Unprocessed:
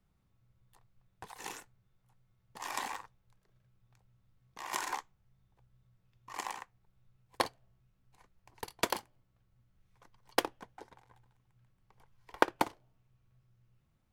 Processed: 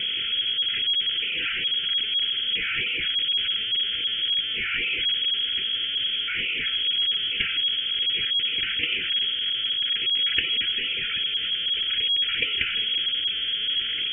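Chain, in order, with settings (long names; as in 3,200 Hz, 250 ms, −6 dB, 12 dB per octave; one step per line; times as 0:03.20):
converter with a step at zero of −21.5 dBFS
sample-and-hold swept by an LFO 21×, swing 60% 2.5 Hz
pitch vibrato 4.7 Hz 30 cents
flanger 0.39 Hz, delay 3.8 ms, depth 1.7 ms, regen +62%
voice inversion scrambler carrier 3,300 Hz
linear-phase brick-wall band-stop 530–1,300 Hz
level +4 dB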